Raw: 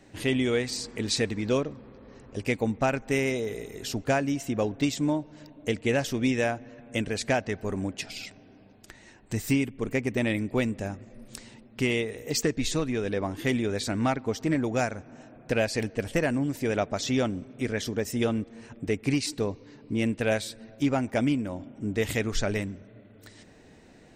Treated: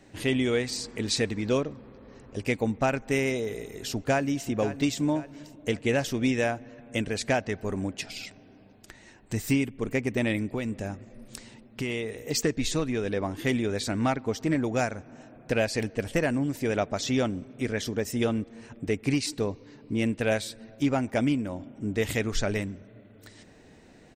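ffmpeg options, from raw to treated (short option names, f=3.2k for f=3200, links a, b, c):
-filter_complex "[0:a]asplit=2[a][b];[b]afade=t=in:st=3.64:d=0.01,afade=t=out:st=4.49:d=0.01,aecho=0:1:530|1060|1590|2120:0.237137|0.106712|0.0480203|0.0216091[c];[a][c]amix=inputs=2:normalize=0,asettb=1/sr,asplit=3[d][e][f];[d]atrim=end=10.544[g];[e]atrim=start=10.54:end=12.2,asetpts=PTS-STARTPTS,afade=t=in:d=0.004:c=qsin,afade=t=out:st=1.656:d=0.004:c=qsin,acompressor=threshold=-26dB:ratio=6:attack=3.2:release=140:knee=1:detection=peak[h];[f]atrim=start=12.196[i];[g][h]acrossfade=d=0.004:c1=hsin:c2=qsin[j];[j][i]acrossfade=d=0.004:c1=qsin:c2=hsin"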